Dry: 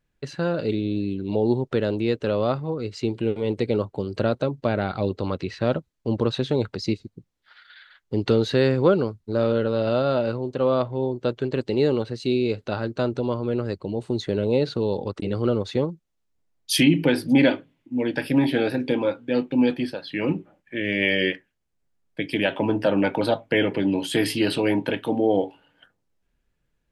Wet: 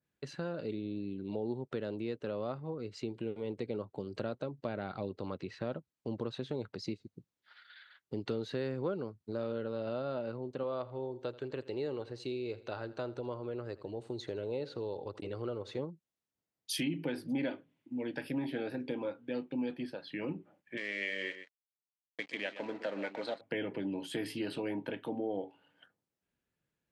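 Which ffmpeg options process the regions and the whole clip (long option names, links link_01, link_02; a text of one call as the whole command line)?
ffmpeg -i in.wav -filter_complex "[0:a]asettb=1/sr,asplit=3[link_01][link_02][link_03];[link_01]atrim=end=10.634[link_04];[link_02]atrim=start=10.63:end=15.79,asetpts=PTS-STARTPTS,afade=type=in:duration=0.004:curve=qsin,afade=type=out:start_time=5.156:duration=0.004:curve=qsin,equalizer=frequency=200:width_type=o:width=0.74:gain=-11.5,aecho=1:1:82|164|246:0.106|0.0455|0.0196,atrim=end_sample=227556[link_05];[link_03]atrim=start=15.786[link_06];[link_04][link_05]acrossfade=duration=0.004:curve1=hsin:curve2=qsin[link_07];[link_07][link_06]acrossfade=duration=0.004:curve1=qsin:curve2=hsin,asettb=1/sr,asplit=3[link_08][link_09][link_10];[link_08]atrim=end=20.774[link_11];[link_09]atrim=start=20.77:end=23.41,asetpts=PTS-STARTPTS,afade=type=in:duration=0.004:curve=qsin,afade=type=out:start_time=2.636:duration=0.004:curve=qsin,aeval=exprs='sgn(val(0))*max(abs(val(0))-0.0133,0)':channel_layout=same,highpass=290,equalizer=frequency=330:width_type=q:width=4:gain=-5,equalizer=frequency=880:width_type=q:width=4:gain=-4,equalizer=frequency=2000:width_type=q:width=4:gain=7,equalizer=frequency=4100:width_type=q:width=4:gain=7,lowpass=frequency=8400:width=0.5412,lowpass=frequency=8400:width=1.3066,aecho=1:1:124:0.2,atrim=end_sample=116424[link_12];[link_10]atrim=start=23.406[link_13];[link_11][link_12]acrossfade=duration=0.004:curve1=hsin:curve2=qsin[link_14];[link_14][link_13]acrossfade=duration=0.004:curve1=qsin:curve2=hsin,highpass=110,acompressor=threshold=-31dB:ratio=2,adynamicequalizer=threshold=0.00447:dfrequency=2400:dqfactor=0.7:tfrequency=2400:tqfactor=0.7:attack=5:release=100:ratio=0.375:range=2.5:mode=cutabove:tftype=highshelf,volume=-7.5dB" out.wav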